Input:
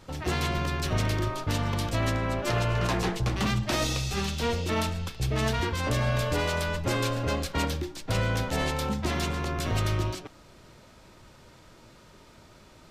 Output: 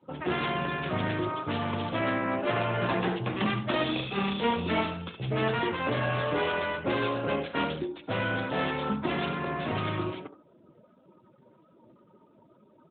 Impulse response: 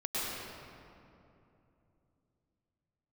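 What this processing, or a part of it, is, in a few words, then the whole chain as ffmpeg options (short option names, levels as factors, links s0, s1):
mobile call with aggressive noise cancelling: -filter_complex "[0:a]asplit=3[s0][s1][s2];[s0]afade=t=out:st=3.87:d=0.02[s3];[s1]asplit=2[s4][s5];[s5]adelay=35,volume=0.708[s6];[s4][s6]amix=inputs=2:normalize=0,afade=t=in:st=3.87:d=0.02,afade=t=out:st=4.79:d=0.02[s7];[s2]afade=t=in:st=4.79:d=0.02[s8];[s3][s7][s8]amix=inputs=3:normalize=0,highpass=170,aecho=1:1:39|70:0.15|0.316,afftdn=nr=23:nf=-48,volume=1.26" -ar 8000 -c:a libopencore_amrnb -b:a 12200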